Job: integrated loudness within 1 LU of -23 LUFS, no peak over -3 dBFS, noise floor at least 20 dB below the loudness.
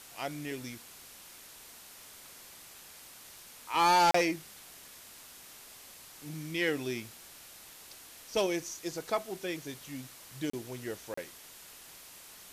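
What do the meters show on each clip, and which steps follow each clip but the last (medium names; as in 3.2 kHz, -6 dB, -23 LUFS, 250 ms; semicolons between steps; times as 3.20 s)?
dropouts 3; longest dropout 34 ms; noise floor -52 dBFS; noise floor target -53 dBFS; loudness -32.5 LUFS; peak level -17.0 dBFS; loudness target -23.0 LUFS
-> interpolate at 4.11/10.50/11.14 s, 34 ms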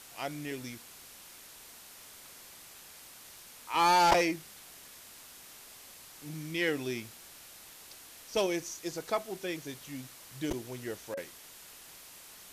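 dropouts 0; noise floor -52 dBFS; noise floor target -53 dBFS
-> noise reduction 6 dB, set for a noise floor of -52 dBFS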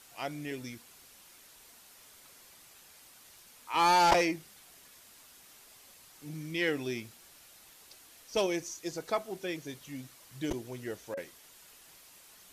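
noise floor -57 dBFS; loudness -32.0 LUFS; peak level -10.0 dBFS; loudness target -23.0 LUFS
-> trim +9 dB; peak limiter -3 dBFS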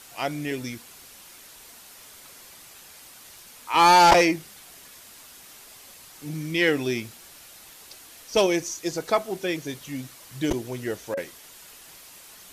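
loudness -23.5 LUFS; peak level -3.0 dBFS; noise floor -48 dBFS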